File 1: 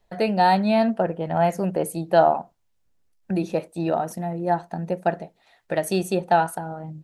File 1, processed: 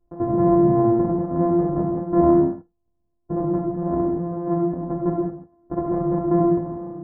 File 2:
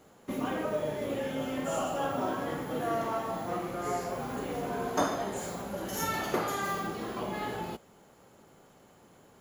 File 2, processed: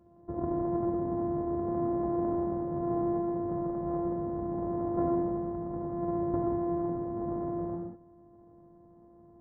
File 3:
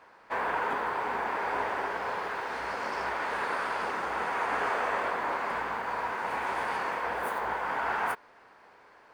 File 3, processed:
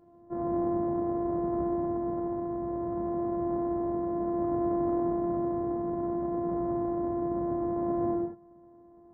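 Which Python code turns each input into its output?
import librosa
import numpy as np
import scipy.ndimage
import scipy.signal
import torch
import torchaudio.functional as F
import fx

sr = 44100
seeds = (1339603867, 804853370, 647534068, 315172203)

y = np.r_[np.sort(x[:len(x) // 128 * 128].reshape(-1, 128), axis=1).ravel(), x[len(x) // 128 * 128:]]
y = scipy.ndimage.gaussian_filter1d(y, 9.5, mode='constant')
y = fx.rev_gated(y, sr, seeds[0], gate_ms=220, shape='flat', drr_db=-0.5)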